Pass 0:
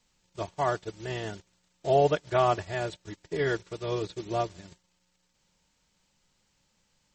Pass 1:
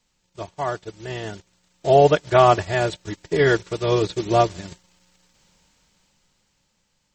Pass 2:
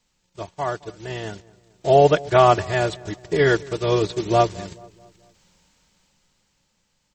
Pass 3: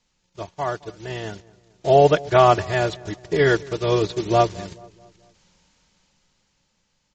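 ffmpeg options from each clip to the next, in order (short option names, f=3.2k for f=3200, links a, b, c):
-af "dynaudnorm=f=260:g=13:m=13dB,volume=1dB"
-filter_complex "[0:a]asplit=2[a][b];[b]adelay=217,lowpass=f=1.4k:p=1,volume=-21dB,asplit=2[c][d];[d]adelay=217,lowpass=f=1.4k:p=1,volume=0.52,asplit=2[e][f];[f]adelay=217,lowpass=f=1.4k:p=1,volume=0.52,asplit=2[g][h];[h]adelay=217,lowpass=f=1.4k:p=1,volume=0.52[i];[a][c][e][g][i]amix=inputs=5:normalize=0"
-af "aresample=16000,aresample=44100"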